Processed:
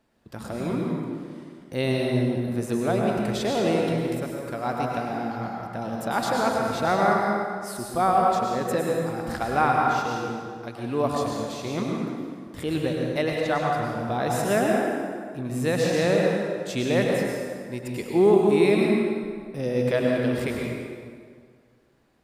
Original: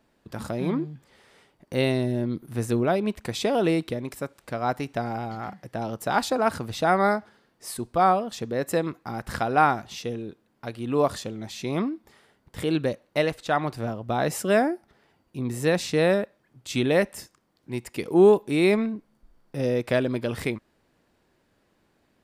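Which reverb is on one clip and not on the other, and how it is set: plate-style reverb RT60 2 s, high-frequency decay 0.7×, pre-delay 90 ms, DRR -1.5 dB; trim -3 dB

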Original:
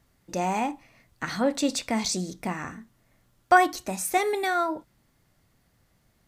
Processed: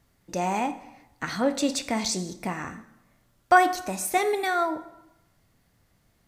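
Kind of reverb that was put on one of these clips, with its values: plate-style reverb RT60 0.93 s, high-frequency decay 0.75×, DRR 11 dB

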